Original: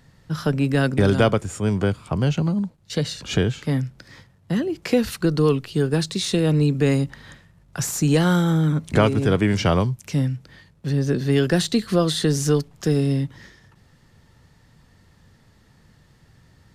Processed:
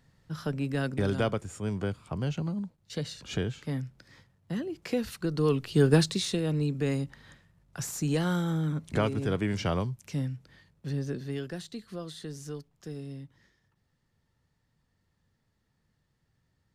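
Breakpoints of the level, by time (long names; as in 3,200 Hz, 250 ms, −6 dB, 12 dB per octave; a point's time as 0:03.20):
0:05.29 −10.5 dB
0:05.92 +1 dB
0:06.41 −10 dB
0:10.94 −10 dB
0:11.62 −20 dB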